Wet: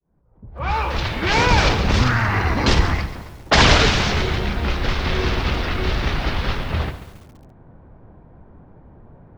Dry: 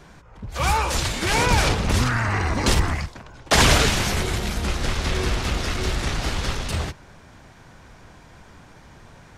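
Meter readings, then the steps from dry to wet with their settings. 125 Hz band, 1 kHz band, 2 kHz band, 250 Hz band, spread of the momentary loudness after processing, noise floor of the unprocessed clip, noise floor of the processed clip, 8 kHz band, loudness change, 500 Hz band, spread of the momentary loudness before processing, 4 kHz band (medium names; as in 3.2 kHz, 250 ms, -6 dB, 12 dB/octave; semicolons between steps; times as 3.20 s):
+3.0 dB, +3.0 dB, +3.5 dB, +3.0 dB, 11 LU, -48 dBFS, -49 dBFS, -5.5 dB, +2.5 dB, +3.0 dB, 10 LU, +2.5 dB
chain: fade-in on the opening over 1.19 s; de-hum 48.09 Hz, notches 16; level-controlled noise filter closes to 540 Hz, open at -16 dBFS; low-pass 5.5 kHz 24 dB/octave; bit-crushed delay 138 ms, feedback 55%, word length 7-bit, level -13.5 dB; trim +3.5 dB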